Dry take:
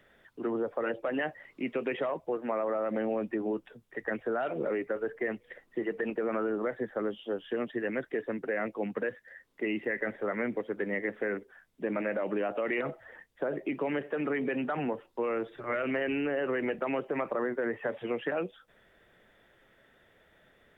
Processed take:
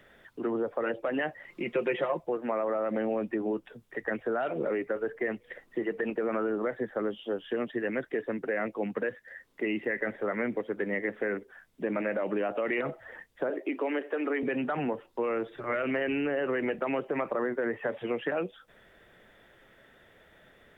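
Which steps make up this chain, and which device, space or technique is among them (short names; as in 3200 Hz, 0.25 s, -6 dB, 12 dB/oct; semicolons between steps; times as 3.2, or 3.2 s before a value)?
parallel compression (in parallel at -3 dB: compressor, threshold -43 dBFS, peak gain reduction 15 dB); 1.48–2.23 on the sum: comb 5.7 ms, depth 72%; 13.5–14.43 steep high-pass 250 Hz 36 dB/oct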